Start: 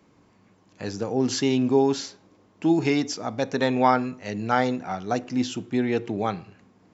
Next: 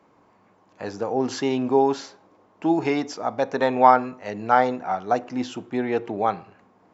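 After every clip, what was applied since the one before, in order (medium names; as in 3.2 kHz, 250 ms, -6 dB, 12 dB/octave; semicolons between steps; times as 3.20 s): peaking EQ 850 Hz +14 dB 2.6 oct; trim -7.5 dB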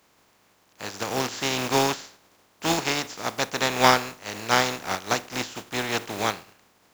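spectral contrast reduction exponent 0.34; trim -3 dB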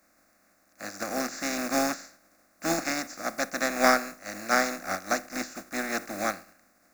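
static phaser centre 630 Hz, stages 8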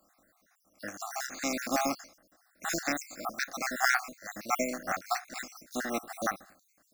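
random holes in the spectrogram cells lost 56%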